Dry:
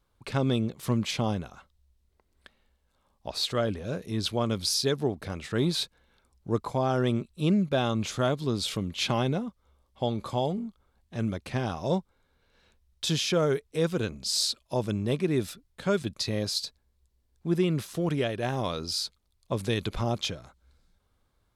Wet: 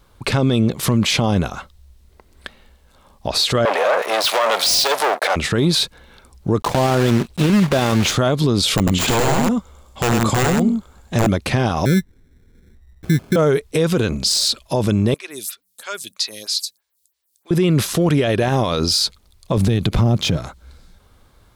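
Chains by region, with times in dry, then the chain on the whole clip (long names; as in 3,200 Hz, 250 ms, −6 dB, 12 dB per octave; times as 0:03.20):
0:03.65–0:05.36: leveller curve on the samples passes 5 + Chebyshev high-pass filter 640 Hz, order 3 + multiband upward and downward expander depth 100%
0:06.60–0:08.16: one scale factor per block 3 bits + high-shelf EQ 8,800 Hz −11 dB
0:08.77–0:11.27: wrap-around overflow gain 22.5 dB + parametric band 7,200 Hz +14 dB 0.2 octaves + single-tap delay 98 ms −3 dB
0:11.85–0:13.36: inverse Chebyshev band-stop filter 720–10,000 Hz + sample-rate reduction 1,900 Hz
0:15.14–0:17.51: first difference + hum removal 95.25 Hz, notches 2 + phaser with staggered stages 3.1 Hz
0:19.57–0:20.37: mu-law and A-law mismatch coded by A + parametric band 140 Hz +13.5 dB 2.6 octaves + downward compressor, threshold −25 dBFS
whole clip: de-essing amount 60%; boost into a limiter +26.5 dB; level −7.5 dB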